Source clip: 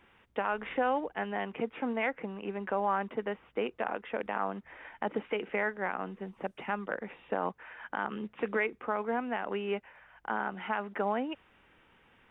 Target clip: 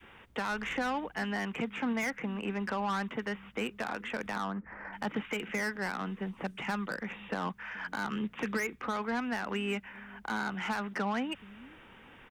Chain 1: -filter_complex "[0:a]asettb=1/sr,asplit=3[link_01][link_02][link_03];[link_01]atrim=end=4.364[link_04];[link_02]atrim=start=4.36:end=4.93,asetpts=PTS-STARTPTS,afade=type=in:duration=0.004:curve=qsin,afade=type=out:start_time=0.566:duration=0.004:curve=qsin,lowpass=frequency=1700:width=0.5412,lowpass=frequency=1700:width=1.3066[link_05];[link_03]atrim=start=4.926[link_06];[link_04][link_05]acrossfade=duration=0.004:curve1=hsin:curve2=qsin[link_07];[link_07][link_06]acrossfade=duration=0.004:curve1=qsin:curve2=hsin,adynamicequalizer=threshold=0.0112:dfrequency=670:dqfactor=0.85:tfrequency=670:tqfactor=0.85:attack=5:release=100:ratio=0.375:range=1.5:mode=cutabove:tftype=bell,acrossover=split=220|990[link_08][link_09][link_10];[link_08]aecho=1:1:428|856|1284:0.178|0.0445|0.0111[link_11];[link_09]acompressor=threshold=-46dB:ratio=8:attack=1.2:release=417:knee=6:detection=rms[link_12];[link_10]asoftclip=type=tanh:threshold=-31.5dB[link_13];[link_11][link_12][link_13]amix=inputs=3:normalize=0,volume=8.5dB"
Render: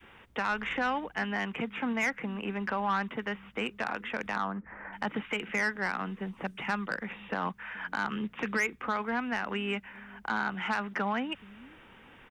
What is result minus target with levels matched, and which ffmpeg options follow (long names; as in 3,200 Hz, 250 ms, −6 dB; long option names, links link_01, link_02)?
soft clipping: distortion −7 dB
-filter_complex "[0:a]asettb=1/sr,asplit=3[link_01][link_02][link_03];[link_01]atrim=end=4.364[link_04];[link_02]atrim=start=4.36:end=4.93,asetpts=PTS-STARTPTS,afade=type=in:duration=0.004:curve=qsin,afade=type=out:start_time=0.566:duration=0.004:curve=qsin,lowpass=frequency=1700:width=0.5412,lowpass=frequency=1700:width=1.3066[link_05];[link_03]atrim=start=4.926[link_06];[link_04][link_05]acrossfade=duration=0.004:curve1=hsin:curve2=qsin[link_07];[link_07][link_06]acrossfade=duration=0.004:curve1=qsin:curve2=hsin,adynamicequalizer=threshold=0.0112:dfrequency=670:dqfactor=0.85:tfrequency=670:tqfactor=0.85:attack=5:release=100:ratio=0.375:range=1.5:mode=cutabove:tftype=bell,acrossover=split=220|990[link_08][link_09][link_10];[link_08]aecho=1:1:428|856|1284:0.178|0.0445|0.0111[link_11];[link_09]acompressor=threshold=-46dB:ratio=8:attack=1.2:release=417:knee=6:detection=rms[link_12];[link_10]asoftclip=type=tanh:threshold=-40dB[link_13];[link_11][link_12][link_13]amix=inputs=3:normalize=0,volume=8.5dB"